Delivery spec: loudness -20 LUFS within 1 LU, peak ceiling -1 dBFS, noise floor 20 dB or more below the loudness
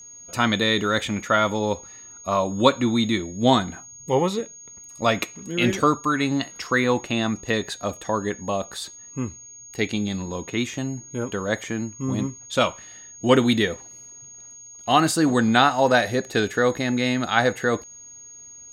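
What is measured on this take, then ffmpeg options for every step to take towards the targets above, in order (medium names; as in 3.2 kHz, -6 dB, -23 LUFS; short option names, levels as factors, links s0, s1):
steady tone 6.6 kHz; tone level -41 dBFS; loudness -23.0 LUFS; peak level -1.5 dBFS; loudness target -20.0 LUFS
-> -af "bandreject=f=6600:w=30"
-af "volume=1.41,alimiter=limit=0.891:level=0:latency=1"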